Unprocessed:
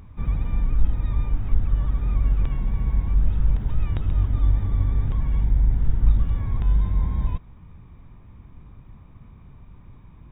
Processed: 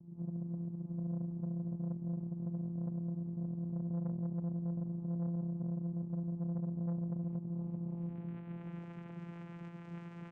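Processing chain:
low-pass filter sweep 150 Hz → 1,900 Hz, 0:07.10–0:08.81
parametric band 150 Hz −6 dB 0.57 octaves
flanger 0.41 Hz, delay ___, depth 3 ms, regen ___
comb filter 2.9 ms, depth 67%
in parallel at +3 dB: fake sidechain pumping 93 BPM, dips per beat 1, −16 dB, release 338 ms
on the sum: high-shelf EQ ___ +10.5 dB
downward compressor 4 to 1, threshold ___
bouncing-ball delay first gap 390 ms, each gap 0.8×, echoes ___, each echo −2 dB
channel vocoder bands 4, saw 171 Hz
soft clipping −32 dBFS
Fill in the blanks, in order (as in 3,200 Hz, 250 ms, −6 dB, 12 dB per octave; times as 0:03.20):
5.9 ms, −62%, 2,200 Hz, −23 dBFS, 8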